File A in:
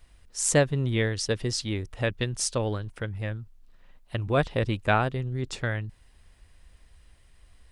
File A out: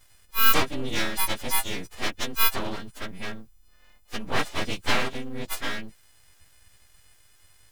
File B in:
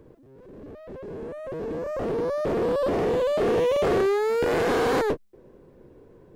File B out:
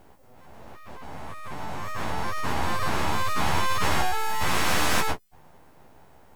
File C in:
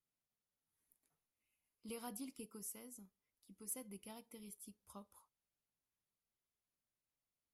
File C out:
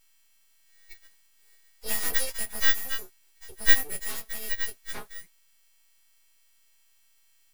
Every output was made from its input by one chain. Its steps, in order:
every partial snapped to a pitch grid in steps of 3 semitones
full-wave rectification
loudness normalisation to −27 LKFS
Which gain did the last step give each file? 0.0, +1.0, +18.5 decibels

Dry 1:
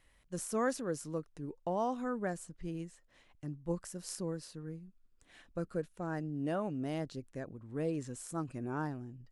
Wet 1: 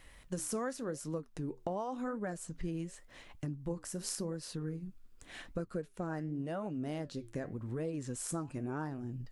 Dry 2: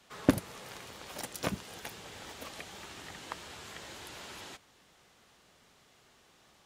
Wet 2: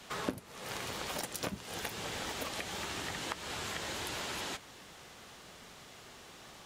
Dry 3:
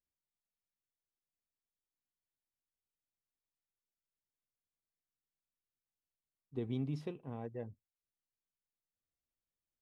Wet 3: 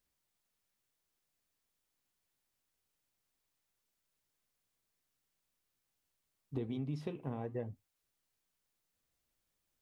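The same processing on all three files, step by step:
downward compressor 6 to 1, threshold −46 dBFS
flanger 0.89 Hz, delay 3.7 ms, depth 9.7 ms, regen −77%
level +15 dB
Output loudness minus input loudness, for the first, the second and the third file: −1.0, +1.0, +1.0 LU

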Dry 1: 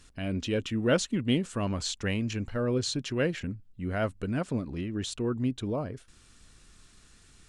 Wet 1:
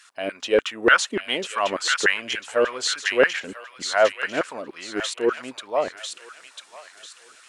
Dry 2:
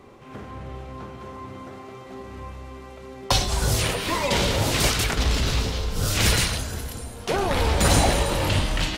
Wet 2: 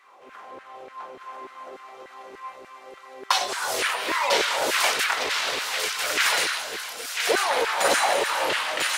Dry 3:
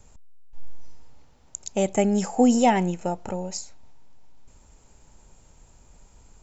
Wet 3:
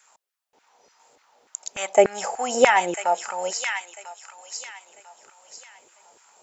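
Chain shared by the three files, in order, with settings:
auto-filter high-pass saw down 3.4 Hz 380–1,700 Hz
delay with a high-pass on its return 996 ms, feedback 34%, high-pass 1,800 Hz, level −3 dB
dynamic equaliser 1,700 Hz, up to +5 dB, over −38 dBFS, Q 0.84
loudness normalisation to −23 LKFS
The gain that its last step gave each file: +6.0, −3.5, +2.0 decibels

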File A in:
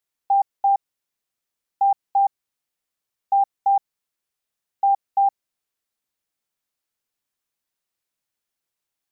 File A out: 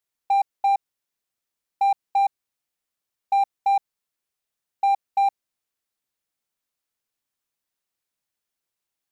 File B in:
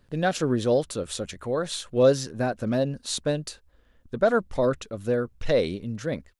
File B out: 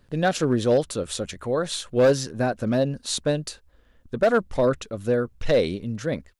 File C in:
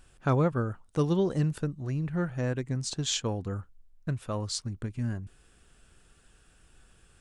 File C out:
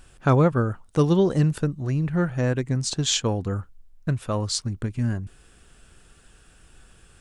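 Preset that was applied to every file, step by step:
hard clipping −15 dBFS
loudness normalisation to −24 LKFS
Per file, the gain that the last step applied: −1.0, +2.5, +7.0 decibels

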